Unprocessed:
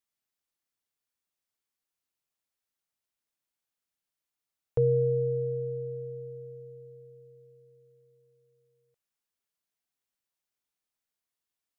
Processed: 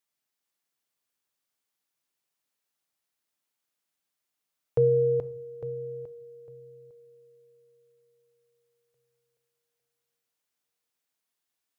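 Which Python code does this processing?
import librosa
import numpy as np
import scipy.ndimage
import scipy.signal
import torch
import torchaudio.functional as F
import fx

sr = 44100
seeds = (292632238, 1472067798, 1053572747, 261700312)

y = fx.highpass(x, sr, hz=140.0, slope=6)
y = fx.echo_feedback(y, sr, ms=427, feedback_pct=42, wet_db=-5)
y = fx.room_shoebox(y, sr, seeds[0], volume_m3=510.0, walls='furnished', distance_m=0.37)
y = y * 10.0 ** (3.0 / 20.0)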